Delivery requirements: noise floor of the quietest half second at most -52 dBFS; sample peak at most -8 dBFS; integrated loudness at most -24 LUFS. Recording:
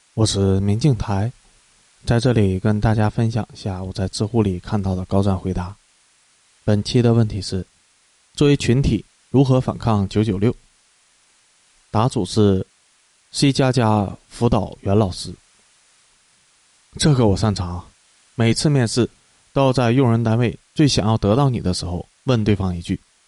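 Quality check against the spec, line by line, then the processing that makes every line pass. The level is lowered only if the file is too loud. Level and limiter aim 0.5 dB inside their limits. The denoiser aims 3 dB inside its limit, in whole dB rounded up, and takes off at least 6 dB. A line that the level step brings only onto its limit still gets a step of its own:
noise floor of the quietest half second -58 dBFS: OK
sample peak -5.0 dBFS: fail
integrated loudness -19.5 LUFS: fail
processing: gain -5 dB

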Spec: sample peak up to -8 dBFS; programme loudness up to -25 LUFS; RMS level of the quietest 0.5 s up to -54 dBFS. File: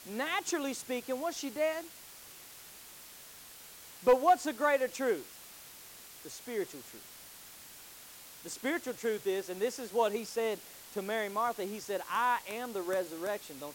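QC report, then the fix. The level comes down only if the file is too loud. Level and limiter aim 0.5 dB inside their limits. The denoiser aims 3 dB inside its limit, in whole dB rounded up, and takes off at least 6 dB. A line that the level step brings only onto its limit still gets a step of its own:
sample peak -16.0 dBFS: OK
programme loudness -33.5 LUFS: OK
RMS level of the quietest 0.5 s -52 dBFS: fail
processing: denoiser 6 dB, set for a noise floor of -52 dBFS

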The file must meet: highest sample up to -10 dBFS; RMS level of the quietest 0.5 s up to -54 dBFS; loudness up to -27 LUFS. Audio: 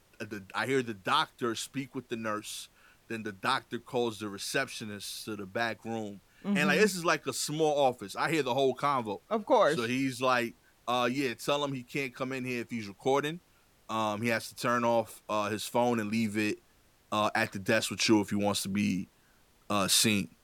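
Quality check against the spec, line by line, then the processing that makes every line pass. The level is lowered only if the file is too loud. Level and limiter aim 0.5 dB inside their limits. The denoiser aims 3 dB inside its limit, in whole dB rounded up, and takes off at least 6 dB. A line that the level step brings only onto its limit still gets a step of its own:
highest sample -12.5 dBFS: OK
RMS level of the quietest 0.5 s -65 dBFS: OK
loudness -30.5 LUFS: OK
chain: none

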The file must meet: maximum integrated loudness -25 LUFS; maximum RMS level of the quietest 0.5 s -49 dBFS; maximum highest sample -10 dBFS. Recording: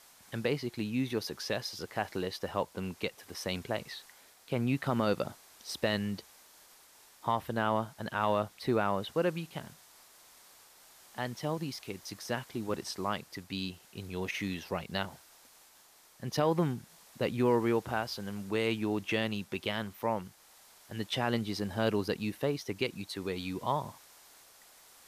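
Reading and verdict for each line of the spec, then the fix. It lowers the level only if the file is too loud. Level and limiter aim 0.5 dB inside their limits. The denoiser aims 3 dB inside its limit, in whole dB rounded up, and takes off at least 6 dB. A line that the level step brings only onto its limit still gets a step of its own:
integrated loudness -34.0 LUFS: OK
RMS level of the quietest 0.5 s -61 dBFS: OK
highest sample -15.0 dBFS: OK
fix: none

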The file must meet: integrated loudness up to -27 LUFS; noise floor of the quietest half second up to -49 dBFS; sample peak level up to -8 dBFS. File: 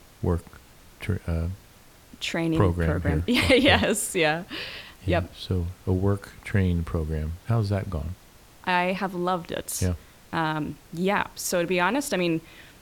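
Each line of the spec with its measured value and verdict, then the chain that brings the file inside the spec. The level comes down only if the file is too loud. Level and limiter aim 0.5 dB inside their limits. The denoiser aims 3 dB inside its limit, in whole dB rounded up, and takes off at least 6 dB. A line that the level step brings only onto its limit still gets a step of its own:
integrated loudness -26.0 LUFS: fail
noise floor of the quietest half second -52 dBFS: OK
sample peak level -5.5 dBFS: fail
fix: gain -1.5 dB; limiter -8.5 dBFS

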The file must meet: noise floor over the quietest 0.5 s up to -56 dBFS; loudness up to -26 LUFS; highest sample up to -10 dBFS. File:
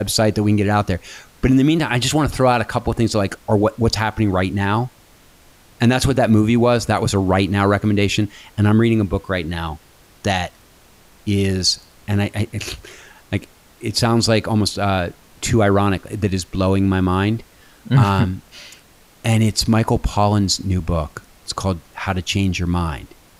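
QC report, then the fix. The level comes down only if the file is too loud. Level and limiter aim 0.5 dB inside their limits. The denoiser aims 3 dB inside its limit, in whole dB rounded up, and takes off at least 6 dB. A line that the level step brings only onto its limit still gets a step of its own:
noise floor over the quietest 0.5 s -49 dBFS: fail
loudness -18.5 LUFS: fail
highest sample -3.5 dBFS: fail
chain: gain -8 dB

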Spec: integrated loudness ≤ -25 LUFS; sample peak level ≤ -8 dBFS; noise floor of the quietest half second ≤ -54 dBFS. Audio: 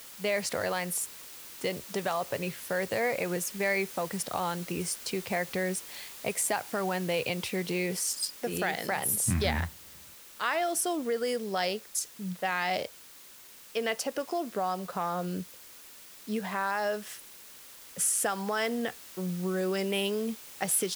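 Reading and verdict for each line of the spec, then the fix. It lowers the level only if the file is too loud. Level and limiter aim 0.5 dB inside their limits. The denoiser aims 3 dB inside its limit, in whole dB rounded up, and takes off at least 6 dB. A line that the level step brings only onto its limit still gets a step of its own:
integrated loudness -31.0 LUFS: OK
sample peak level -13.5 dBFS: OK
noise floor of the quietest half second -51 dBFS: fail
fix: denoiser 6 dB, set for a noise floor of -51 dBFS

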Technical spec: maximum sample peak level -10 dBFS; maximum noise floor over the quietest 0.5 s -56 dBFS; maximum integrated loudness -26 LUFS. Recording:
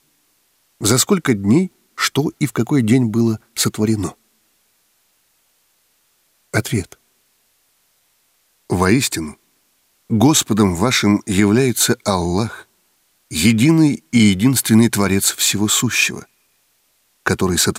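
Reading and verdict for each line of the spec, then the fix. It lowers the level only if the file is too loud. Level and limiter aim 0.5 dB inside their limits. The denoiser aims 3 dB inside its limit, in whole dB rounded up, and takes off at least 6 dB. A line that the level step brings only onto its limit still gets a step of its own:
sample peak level -2.5 dBFS: fail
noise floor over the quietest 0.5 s -62 dBFS: OK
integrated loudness -16.0 LUFS: fail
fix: gain -10.5 dB

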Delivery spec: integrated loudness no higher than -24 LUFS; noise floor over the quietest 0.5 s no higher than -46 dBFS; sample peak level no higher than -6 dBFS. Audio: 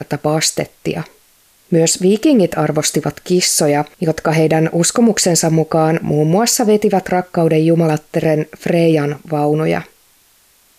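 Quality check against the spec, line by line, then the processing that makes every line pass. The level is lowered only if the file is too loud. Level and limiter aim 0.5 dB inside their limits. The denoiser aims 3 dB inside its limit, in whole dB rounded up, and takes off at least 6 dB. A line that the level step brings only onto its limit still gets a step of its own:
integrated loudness -14.5 LUFS: fail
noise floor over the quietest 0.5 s -53 dBFS: OK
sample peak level -4.0 dBFS: fail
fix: gain -10 dB

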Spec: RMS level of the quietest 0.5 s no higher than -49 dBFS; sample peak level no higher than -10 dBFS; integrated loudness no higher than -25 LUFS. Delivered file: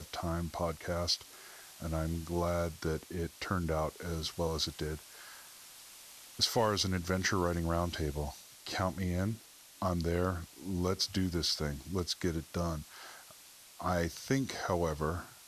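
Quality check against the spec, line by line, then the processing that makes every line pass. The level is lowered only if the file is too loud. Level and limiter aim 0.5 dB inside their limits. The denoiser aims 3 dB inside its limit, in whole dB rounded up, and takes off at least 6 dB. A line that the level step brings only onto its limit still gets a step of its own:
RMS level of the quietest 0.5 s -55 dBFS: OK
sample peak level -16.5 dBFS: OK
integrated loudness -34.5 LUFS: OK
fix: none

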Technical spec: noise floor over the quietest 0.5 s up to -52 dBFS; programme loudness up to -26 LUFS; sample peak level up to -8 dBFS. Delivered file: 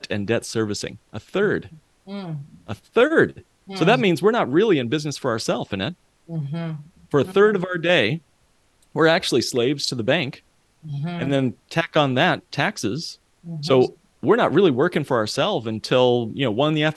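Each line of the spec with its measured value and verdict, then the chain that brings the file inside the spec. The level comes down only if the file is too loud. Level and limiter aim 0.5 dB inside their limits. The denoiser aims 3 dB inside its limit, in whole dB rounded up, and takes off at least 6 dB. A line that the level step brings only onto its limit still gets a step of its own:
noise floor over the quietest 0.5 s -61 dBFS: OK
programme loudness -21.0 LUFS: fail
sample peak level -2.5 dBFS: fail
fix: gain -5.5 dB; limiter -8.5 dBFS

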